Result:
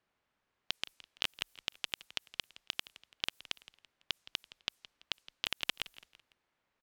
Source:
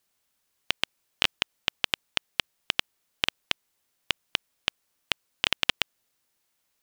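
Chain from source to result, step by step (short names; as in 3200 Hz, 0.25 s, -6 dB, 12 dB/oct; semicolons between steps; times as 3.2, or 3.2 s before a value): low-pass opened by the level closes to 2000 Hz, open at -33.5 dBFS; high shelf 7700 Hz +7.5 dB; limiter -13.5 dBFS, peak gain reduction 13.5 dB; frequency-shifting echo 0.167 s, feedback 41%, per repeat -38 Hz, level -18 dB; gain +1.5 dB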